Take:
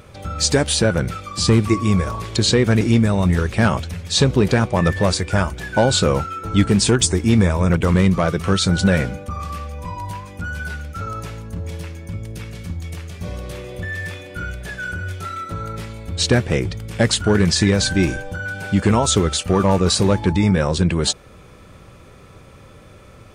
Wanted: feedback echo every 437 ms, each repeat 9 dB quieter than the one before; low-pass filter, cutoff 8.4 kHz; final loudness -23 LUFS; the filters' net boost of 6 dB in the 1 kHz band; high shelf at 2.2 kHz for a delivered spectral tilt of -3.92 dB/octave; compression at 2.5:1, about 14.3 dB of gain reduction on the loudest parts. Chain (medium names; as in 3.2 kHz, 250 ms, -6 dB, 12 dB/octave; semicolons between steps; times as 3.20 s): low-pass 8.4 kHz; peaking EQ 1 kHz +6 dB; treble shelf 2.2 kHz +7 dB; compression 2.5:1, threshold -32 dBFS; feedback delay 437 ms, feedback 35%, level -9 dB; trim +6 dB